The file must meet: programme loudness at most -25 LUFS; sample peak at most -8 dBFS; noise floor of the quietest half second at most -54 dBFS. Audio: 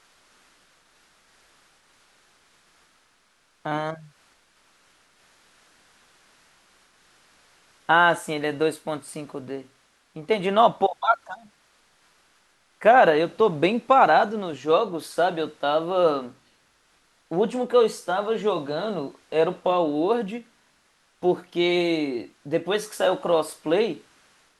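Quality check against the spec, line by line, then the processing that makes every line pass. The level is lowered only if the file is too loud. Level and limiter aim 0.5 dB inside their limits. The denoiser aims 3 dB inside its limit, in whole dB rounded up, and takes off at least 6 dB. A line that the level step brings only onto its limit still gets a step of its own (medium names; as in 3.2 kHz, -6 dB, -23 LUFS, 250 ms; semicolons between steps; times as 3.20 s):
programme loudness -23.0 LUFS: fail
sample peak -5.0 dBFS: fail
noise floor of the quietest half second -64 dBFS: pass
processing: trim -2.5 dB; peak limiter -8.5 dBFS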